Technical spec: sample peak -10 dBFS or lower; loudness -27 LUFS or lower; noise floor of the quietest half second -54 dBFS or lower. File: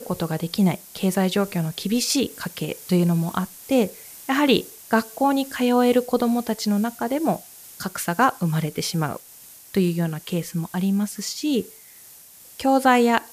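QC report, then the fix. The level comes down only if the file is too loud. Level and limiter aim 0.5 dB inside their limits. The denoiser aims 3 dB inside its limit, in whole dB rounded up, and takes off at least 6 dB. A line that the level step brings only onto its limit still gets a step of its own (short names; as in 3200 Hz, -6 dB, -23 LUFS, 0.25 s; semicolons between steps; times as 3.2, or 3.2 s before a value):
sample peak -4.0 dBFS: fail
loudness -22.5 LUFS: fail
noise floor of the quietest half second -47 dBFS: fail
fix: denoiser 6 dB, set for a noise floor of -47 dBFS; gain -5 dB; limiter -10.5 dBFS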